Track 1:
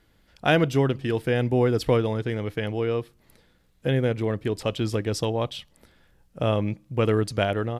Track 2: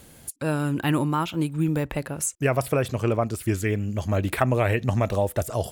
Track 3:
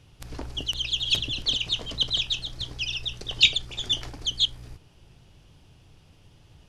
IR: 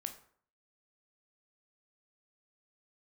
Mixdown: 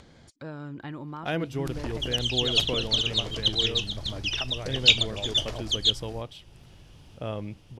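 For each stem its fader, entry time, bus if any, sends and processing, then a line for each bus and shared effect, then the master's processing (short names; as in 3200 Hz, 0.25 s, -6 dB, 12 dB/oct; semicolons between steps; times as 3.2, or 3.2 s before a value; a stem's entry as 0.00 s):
-10.0 dB, 0.80 s, no send, dry
-11.0 dB, 0.00 s, no send, LPF 5300 Hz 24 dB/oct; notch 2700 Hz, Q 6.7; compressor, threshold -23 dBFS, peak gain reduction 7.5 dB
+0.5 dB, 1.45 s, no send, dry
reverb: off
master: upward compressor, threshold -44 dBFS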